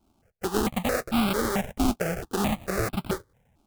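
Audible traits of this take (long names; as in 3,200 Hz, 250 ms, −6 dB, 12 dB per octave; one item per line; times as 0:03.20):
aliases and images of a low sample rate 1,000 Hz, jitter 20%
notches that jump at a steady rate 4.5 Hz 490–1,800 Hz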